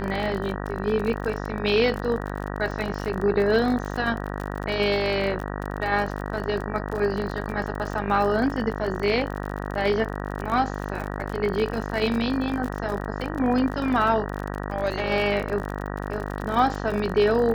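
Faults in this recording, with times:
buzz 50 Hz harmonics 38 -31 dBFS
crackle 42/s -29 dBFS

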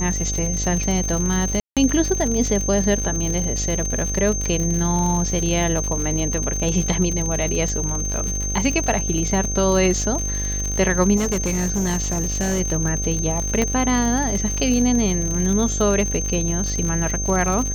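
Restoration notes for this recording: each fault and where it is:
buzz 50 Hz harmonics 15 -26 dBFS
crackle 100/s -24 dBFS
tone 6300 Hz -25 dBFS
1.6–1.77 gap 0.167 s
11.16–12.61 clipped -17.5 dBFS
13.62 pop -7 dBFS

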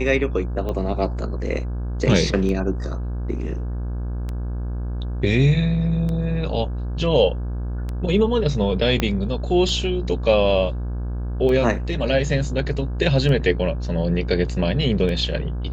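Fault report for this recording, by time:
buzz 60 Hz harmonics 28 -26 dBFS
tick 33 1/3 rpm -17 dBFS
9 pop -6 dBFS

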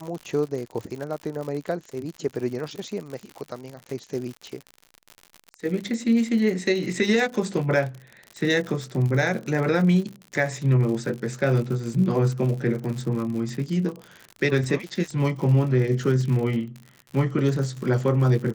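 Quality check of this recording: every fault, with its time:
crackle 82/s -31 dBFS

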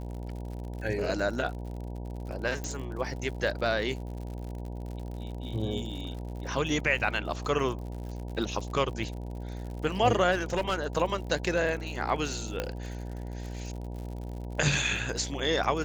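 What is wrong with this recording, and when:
buzz 60 Hz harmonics 16 -37 dBFS
crackle 76/s -38 dBFS
2.64 pop -21 dBFS
10.31–10.87 clipped -23 dBFS
12.6 pop -15 dBFS

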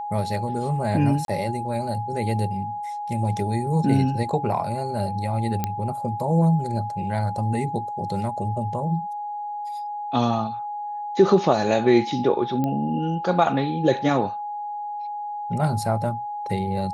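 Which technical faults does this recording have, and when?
tone 830 Hz -28 dBFS
1.25–1.28 gap 32 ms
5.64 pop -10 dBFS
12.64 pop -14 dBFS

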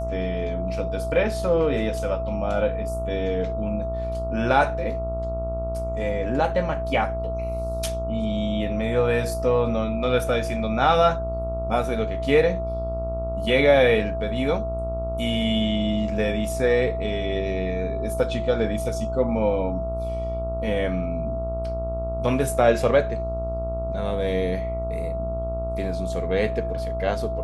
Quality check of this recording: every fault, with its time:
buzz 60 Hz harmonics 23 -30 dBFS
tone 660 Hz -28 dBFS

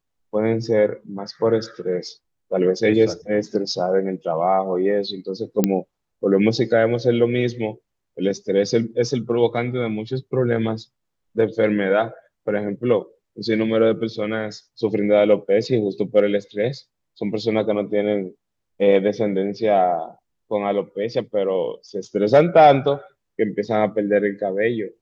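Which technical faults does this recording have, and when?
5.64 pop -4 dBFS

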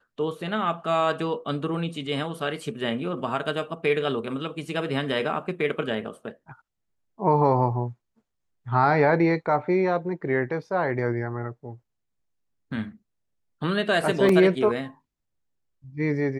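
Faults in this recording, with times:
14.29 gap 3 ms

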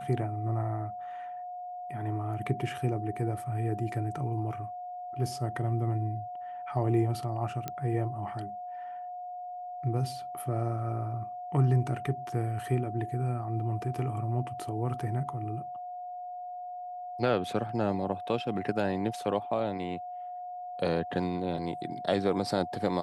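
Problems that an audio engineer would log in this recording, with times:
tone 720 Hz -37 dBFS
7.68 pop -19 dBFS

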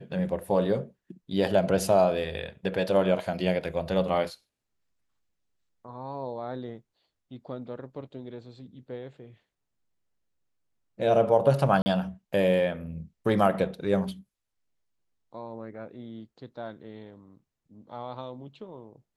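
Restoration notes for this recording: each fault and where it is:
11.82–11.86 gap 40 ms

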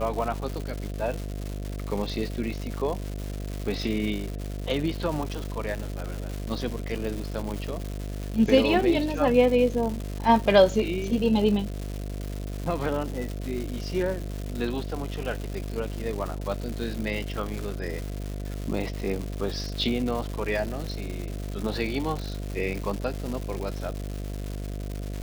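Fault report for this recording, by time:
buzz 50 Hz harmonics 14 -33 dBFS
crackle 330/s -31 dBFS

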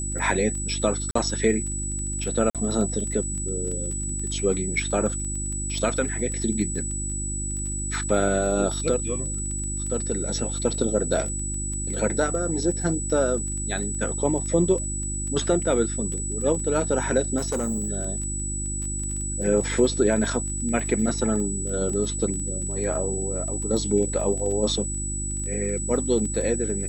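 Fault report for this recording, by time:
crackle 16/s -30 dBFS
hum 50 Hz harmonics 7 -31 dBFS
tone 7900 Hz -30 dBFS
1.11–1.15 gap 44 ms
2.5–2.55 gap 47 ms
17.37–17.9 clipped -22 dBFS

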